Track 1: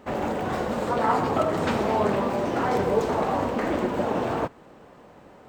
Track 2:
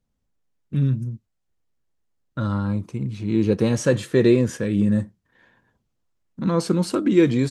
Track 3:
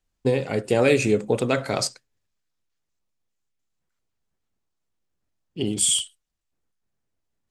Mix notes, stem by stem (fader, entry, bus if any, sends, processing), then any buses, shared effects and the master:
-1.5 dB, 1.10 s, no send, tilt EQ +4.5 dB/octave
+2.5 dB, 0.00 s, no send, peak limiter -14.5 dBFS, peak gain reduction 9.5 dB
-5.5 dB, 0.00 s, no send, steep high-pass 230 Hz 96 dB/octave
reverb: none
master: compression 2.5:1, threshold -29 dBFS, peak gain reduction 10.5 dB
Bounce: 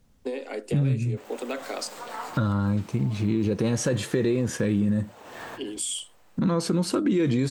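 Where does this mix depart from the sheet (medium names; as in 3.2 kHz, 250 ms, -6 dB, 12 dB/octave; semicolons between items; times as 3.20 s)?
stem 1 -1.5 dB -> -12.0 dB; stem 2 +2.5 dB -> +14.5 dB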